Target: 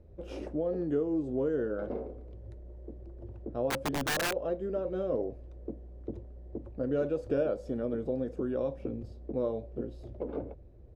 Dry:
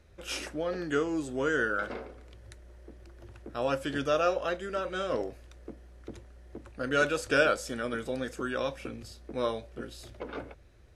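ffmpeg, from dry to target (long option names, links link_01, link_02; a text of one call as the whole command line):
ffmpeg -i in.wav -filter_complex "[0:a]firequalizer=gain_entry='entry(490,0);entry(1400,-21);entry(4400,-24);entry(7800,-30)':delay=0.05:min_phase=1,acompressor=threshold=-35dB:ratio=2,asettb=1/sr,asplit=3[link_01][link_02][link_03];[link_01]atrim=end=3.704[link_04];[link_02]atrim=start=3.7:end=4.34,asetpts=PTS-STARTPTS,afade=type=in:duration=0.004:curve=qsin,afade=type=out:start_time=0.636:duration=0.004:curve=qsin,aeval=exprs='(mod(35.5*val(0)+1,2)-1)/35.5':channel_layout=same[link_05];[link_03]atrim=start=4.336[link_06];[link_04][link_05]acrossfade=duration=0.004:curve1=hsin:curve2=qsin[link_07];[link_07][link_06]acrossfade=duration=0.004:curve1=qsin:curve2=hsin,volume=5dB" out.wav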